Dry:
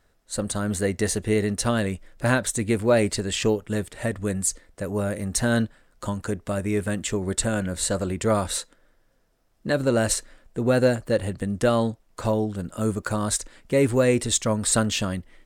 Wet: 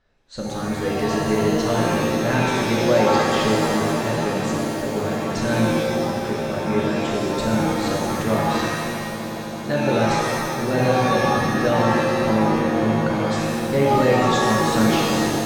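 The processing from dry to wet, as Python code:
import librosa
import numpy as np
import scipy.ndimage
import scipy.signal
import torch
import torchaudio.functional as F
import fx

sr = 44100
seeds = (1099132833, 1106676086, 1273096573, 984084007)

p1 = scipy.signal.sosfilt(scipy.signal.butter(4, 5300.0, 'lowpass', fs=sr, output='sos'), x)
p2 = p1 + fx.echo_swell(p1, sr, ms=82, loudest=8, wet_db=-18, dry=0)
p3 = fx.rev_shimmer(p2, sr, seeds[0], rt60_s=1.5, semitones=7, shimmer_db=-2, drr_db=-2.5)
y = p3 * 10.0 ** (-4.0 / 20.0)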